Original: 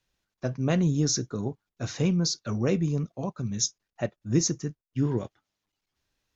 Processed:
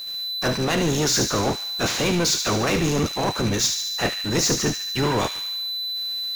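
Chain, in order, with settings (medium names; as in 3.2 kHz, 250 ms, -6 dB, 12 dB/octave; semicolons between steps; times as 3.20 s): spectral peaks clipped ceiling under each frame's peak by 20 dB; reverse; compression, threshold -33 dBFS, peak gain reduction 14.5 dB; reverse; whistle 4 kHz -59 dBFS; power-law waveshaper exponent 0.5; on a send: feedback echo behind a high-pass 73 ms, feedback 64%, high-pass 2 kHz, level -6 dB; on the sum: trim +7.5 dB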